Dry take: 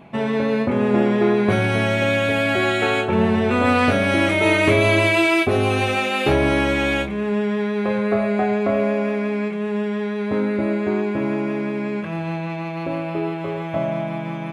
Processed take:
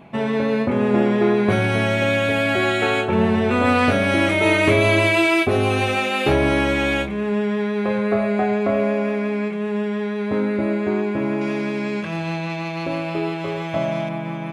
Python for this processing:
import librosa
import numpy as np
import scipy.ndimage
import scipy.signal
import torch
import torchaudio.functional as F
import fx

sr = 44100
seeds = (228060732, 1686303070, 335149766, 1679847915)

y = fx.peak_eq(x, sr, hz=5500.0, db=11.0, octaves=1.8, at=(11.41, 14.09))